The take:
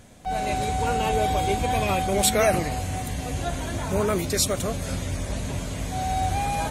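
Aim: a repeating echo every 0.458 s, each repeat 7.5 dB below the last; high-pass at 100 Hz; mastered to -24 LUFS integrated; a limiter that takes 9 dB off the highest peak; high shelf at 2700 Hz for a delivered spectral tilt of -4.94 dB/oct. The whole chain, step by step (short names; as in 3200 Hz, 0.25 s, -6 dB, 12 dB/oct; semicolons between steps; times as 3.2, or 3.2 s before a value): HPF 100 Hz; high shelf 2700 Hz -5.5 dB; limiter -18 dBFS; feedback echo 0.458 s, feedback 42%, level -7.5 dB; gain +3.5 dB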